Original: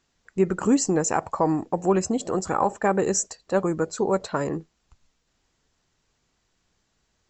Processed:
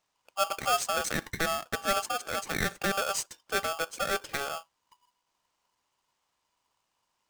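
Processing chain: polarity switched at an audio rate 980 Hz; trim -7.5 dB

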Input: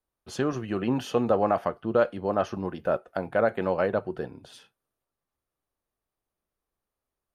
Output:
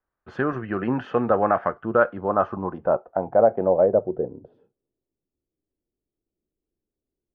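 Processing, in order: low-pass sweep 1.6 kHz -> 340 Hz, 1.83–5.09 s; trim +1.5 dB

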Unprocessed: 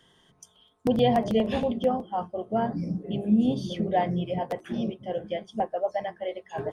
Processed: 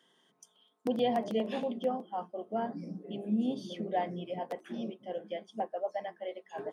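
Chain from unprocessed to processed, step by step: high-pass 200 Hz 24 dB/octave; trim -7 dB

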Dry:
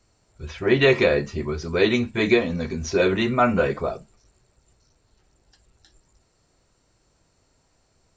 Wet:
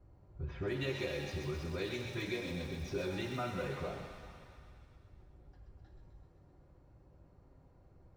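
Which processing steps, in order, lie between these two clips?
companding laws mixed up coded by mu; level-controlled noise filter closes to 840 Hz, open at -15.5 dBFS; tone controls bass +5 dB, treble +8 dB; compression 6:1, threshold -29 dBFS, peak gain reduction 17 dB; 0.96–3.40 s: crackle 160 per s -38 dBFS; comb of notches 220 Hz; feedback echo behind a high-pass 129 ms, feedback 70%, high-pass 1.5 kHz, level -5.5 dB; pitch-shifted reverb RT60 1.6 s, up +7 st, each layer -8 dB, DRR 5 dB; trim -7 dB

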